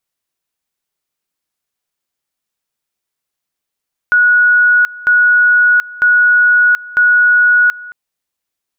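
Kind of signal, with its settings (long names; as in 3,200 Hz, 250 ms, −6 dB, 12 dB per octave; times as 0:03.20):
tone at two levels in turn 1,460 Hz −6 dBFS, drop 21 dB, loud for 0.73 s, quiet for 0.22 s, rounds 4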